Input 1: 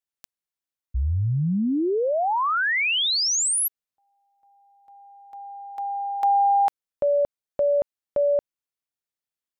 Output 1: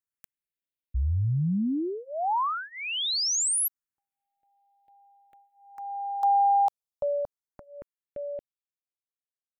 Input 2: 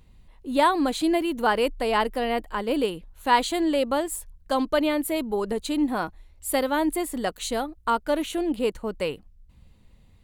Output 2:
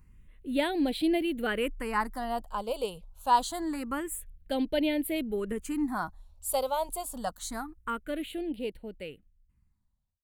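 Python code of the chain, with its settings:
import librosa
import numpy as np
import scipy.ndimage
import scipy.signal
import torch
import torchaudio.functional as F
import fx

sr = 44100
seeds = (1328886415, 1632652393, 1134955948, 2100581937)

y = fx.fade_out_tail(x, sr, length_s=3.02)
y = fx.phaser_stages(y, sr, stages=4, low_hz=300.0, high_hz=1200.0, hz=0.26, feedback_pct=5)
y = F.gain(torch.from_numpy(y), -2.5).numpy()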